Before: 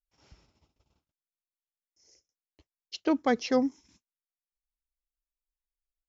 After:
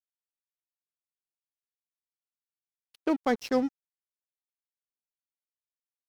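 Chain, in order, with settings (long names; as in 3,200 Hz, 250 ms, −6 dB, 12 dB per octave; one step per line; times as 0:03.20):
low-pass that shuts in the quiet parts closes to 1,600 Hz, open at −23 dBFS
dead-zone distortion −40.5 dBFS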